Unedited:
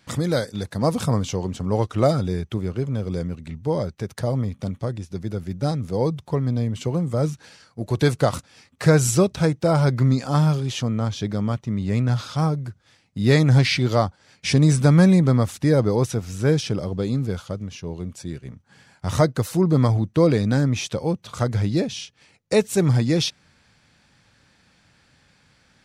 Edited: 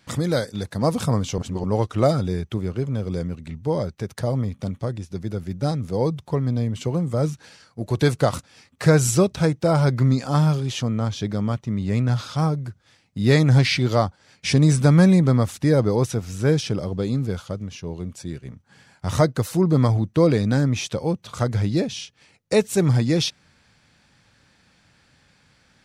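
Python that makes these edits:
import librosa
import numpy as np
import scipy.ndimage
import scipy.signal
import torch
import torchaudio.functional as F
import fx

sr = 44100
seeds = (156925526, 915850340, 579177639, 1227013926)

y = fx.edit(x, sr, fx.reverse_span(start_s=1.38, length_s=0.26), tone=tone)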